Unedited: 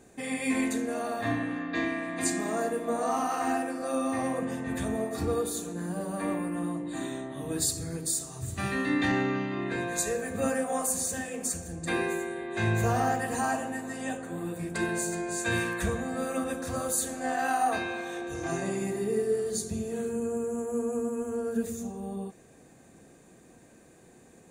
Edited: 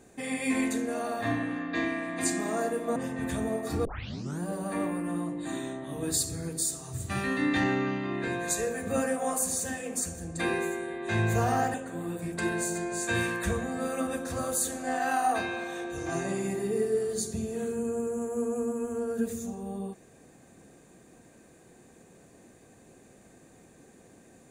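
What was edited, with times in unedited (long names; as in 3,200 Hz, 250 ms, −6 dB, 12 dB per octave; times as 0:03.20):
0:02.96–0:04.44: remove
0:05.33: tape start 0.55 s
0:13.22–0:14.11: remove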